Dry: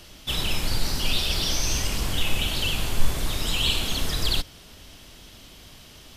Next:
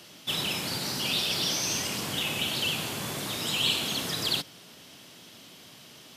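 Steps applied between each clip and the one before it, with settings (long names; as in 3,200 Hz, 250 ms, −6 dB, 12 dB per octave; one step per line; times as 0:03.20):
high-pass filter 130 Hz 24 dB per octave
level −1.5 dB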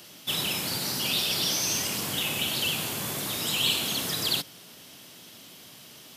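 high-shelf EQ 11,000 Hz +12 dB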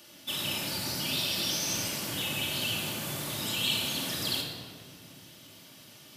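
rectangular room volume 2,500 cubic metres, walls mixed, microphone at 2.5 metres
level −7 dB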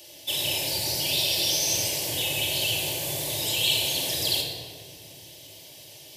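phaser with its sweep stopped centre 540 Hz, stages 4
level +7.5 dB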